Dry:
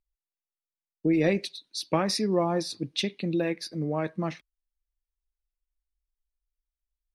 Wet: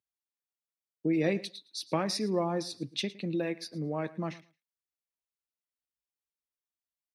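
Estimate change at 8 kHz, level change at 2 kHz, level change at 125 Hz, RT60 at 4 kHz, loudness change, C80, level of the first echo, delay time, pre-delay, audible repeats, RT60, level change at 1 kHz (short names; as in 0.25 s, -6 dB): -4.5 dB, -4.5 dB, -4.5 dB, none, -4.5 dB, none, -19.5 dB, 0.111 s, none, 1, none, -4.5 dB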